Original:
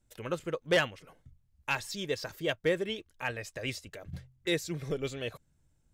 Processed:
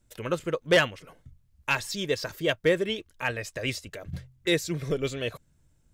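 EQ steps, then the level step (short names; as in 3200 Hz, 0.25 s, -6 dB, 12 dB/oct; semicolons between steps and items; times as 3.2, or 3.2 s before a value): notch 800 Hz, Q 12; +5.5 dB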